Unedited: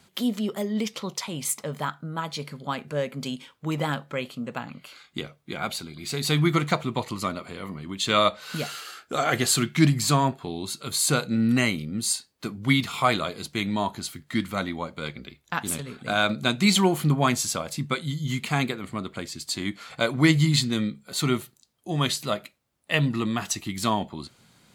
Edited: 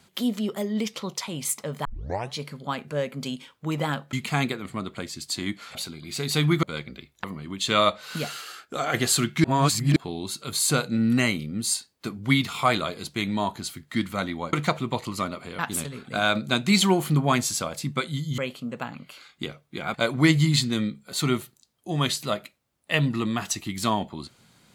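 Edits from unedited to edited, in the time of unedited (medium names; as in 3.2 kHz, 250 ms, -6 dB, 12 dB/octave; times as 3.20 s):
1.85 s: tape start 0.51 s
4.13–5.69 s: swap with 18.32–19.94 s
6.57–7.63 s: swap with 14.92–15.53 s
9.04–9.33 s: gain -3 dB
9.83–10.35 s: reverse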